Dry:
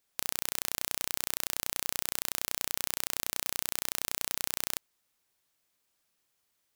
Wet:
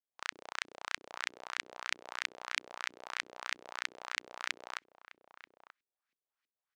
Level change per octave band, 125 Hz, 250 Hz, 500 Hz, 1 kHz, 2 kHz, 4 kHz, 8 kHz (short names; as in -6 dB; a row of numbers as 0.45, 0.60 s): under -15 dB, -11.0 dB, -5.0 dB, +1.0 dB, +3.0 dB, -4.5 dB, -15.5 dB